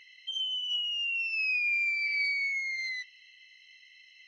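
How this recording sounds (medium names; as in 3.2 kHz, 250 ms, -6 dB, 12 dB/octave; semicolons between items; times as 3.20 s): noise floor -58 dBFS; spectral tilt -17.0 dB/octave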